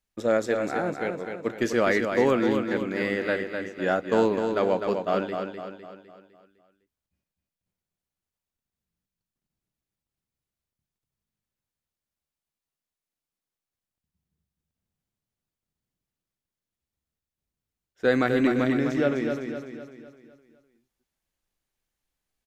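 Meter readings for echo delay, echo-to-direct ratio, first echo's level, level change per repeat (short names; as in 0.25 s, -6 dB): 0.253 s, -5.0 dB, -6.0 dB, -6.5 dB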